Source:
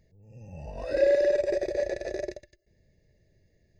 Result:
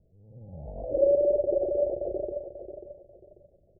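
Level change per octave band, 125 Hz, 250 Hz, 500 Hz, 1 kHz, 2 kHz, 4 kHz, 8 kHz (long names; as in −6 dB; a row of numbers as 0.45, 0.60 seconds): +0.5 dB, +0.5 dB, +0.5 dB, −1.5 dB, below −40 dB, below −35 dB, can't be measured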